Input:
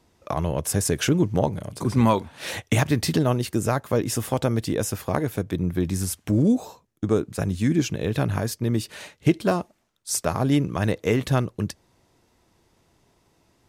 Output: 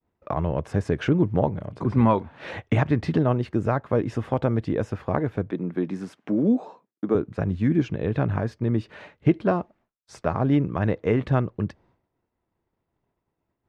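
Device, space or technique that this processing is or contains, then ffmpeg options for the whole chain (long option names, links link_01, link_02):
hearing-loss simulation: -filter_complex "[0:a]lowpass=1900,agate=range=-33dB:threshold=-53dB:ratio=3:detection=peak,asettb=1/sr,asplit=3[link_01][link_02][link_03];[link_01]atrim=end=5.514[link_04];[link_02]atrim=start=5.51:end=7.15,asetpts=PTS-STARTPTS,afade=type=in:duration=0.004:curve=qsin,afade=type=out:start_time=1.636:duration=0.004:curve=qsin,highpass=frequency=190:width=0.5412,highpass=frequency=190:width=1.3066[link_05];[link_03]atrim=start=7.146[link_06];[link_04][link_05]acrossfade=duration=0.004:curve1=hsin:curve2=qsin[link_07];[link_07][link_06]acrossfade=duration=0.004:curve1=qsin:curve2=hsin"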